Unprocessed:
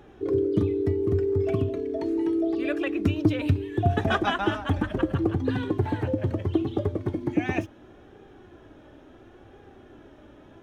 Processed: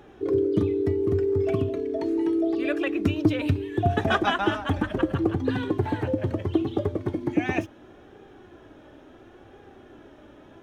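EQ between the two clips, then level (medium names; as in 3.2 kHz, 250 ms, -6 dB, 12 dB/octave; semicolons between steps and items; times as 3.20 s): bass shelf 160 Hz -5 dB; +2.0 dB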